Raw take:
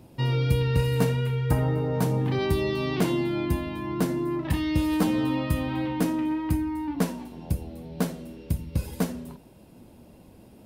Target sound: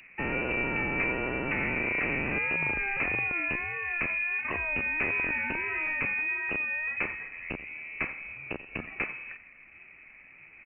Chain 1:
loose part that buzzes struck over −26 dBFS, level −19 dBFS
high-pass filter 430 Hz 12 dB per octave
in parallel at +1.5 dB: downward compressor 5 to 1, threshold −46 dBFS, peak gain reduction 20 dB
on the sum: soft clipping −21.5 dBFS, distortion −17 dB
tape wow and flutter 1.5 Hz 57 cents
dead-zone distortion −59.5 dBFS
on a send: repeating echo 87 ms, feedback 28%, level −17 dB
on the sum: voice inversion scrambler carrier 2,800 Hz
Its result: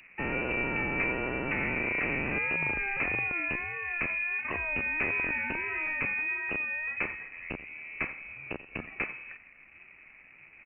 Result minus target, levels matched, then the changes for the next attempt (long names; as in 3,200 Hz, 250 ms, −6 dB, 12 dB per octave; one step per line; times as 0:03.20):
downward compressor: peak gain reduction +6 dB; dead-zone distortion: distortion +9 dB
change: downward compressor 5 to 1, threshold −38.5 dBFS, peak gain reduction 14 dB
change: dead-zone distortion −67.5 dBFS